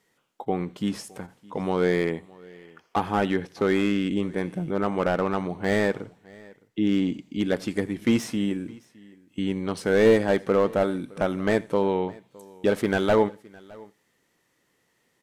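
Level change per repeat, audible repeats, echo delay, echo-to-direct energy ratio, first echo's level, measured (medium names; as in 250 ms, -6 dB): no regular repeats, 2, 84 ms, -20.5 dB, -23.5 dB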